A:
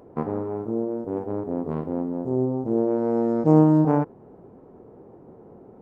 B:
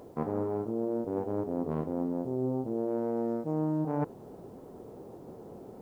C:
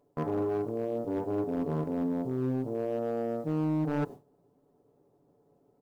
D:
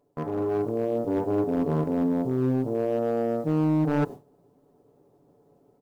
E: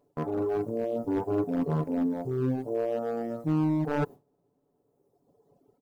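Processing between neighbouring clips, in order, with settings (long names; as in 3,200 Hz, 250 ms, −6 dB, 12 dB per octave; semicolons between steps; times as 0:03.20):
parametric band 620 Hz +2 dB 0.59 octaves; reversed playback; downward compressor 12 to 1, threshold −27 dBFS, peak gain reduction 16.5 dB; reversed playback; bit-depth reduction 12 bits, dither triangular
noise gate with hold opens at −35 dBFS; comb filter 7 ms, depth 57%; hard clipping −24.5 dBFS, distortion −15 dB
automatic gain control gain up to 6 dB
reverb reduction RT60 1.9 s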